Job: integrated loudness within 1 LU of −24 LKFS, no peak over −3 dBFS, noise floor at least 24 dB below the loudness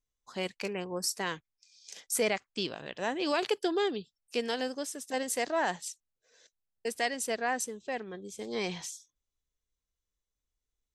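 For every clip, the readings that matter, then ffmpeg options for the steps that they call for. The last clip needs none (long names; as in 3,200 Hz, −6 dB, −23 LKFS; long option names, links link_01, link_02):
integrated loudness −33.5 LKFS; sample peak −16.0 dBFS; target loudness −24.0 LKFS
→ -af "volume=9.5dB"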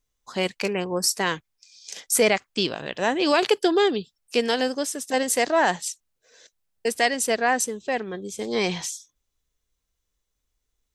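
integrated loudness −24.0 LKFS; sample peak −6.5 dBFS; background noise floor −79 dBFS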